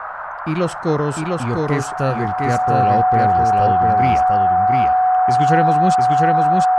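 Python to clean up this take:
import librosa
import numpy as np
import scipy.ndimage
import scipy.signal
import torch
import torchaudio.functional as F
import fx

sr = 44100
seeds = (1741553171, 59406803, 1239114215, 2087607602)

y = fx.notch(x, sr, hz=740.0, q=30.0)
y = fx.noise_reduce(y, sr, print_start_s=0.0, print_end_s=0.5, reduce_db=30.0)
y = fx.fix_echo_inverse(y, sr, delay_ms=701, level_db=-3.0)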